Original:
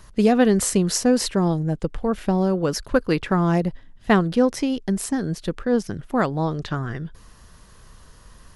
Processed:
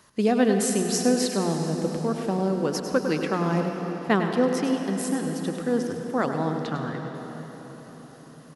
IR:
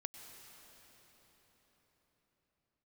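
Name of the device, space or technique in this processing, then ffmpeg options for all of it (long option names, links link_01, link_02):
cathedral: -filter_complex "[0:a]highpass=160,bandreject=frequency=60:width_type=h:width=6,bandreject=frequency=120:width_type=h:width=6,bandreject=frequency=180:width_type=h:width=6,aecho=1:1:101:0.335[link_01];[1:a]atrim=start_sample=2205[link_02];[link_01][link_02]afir=irnorm=-1:irlink=0"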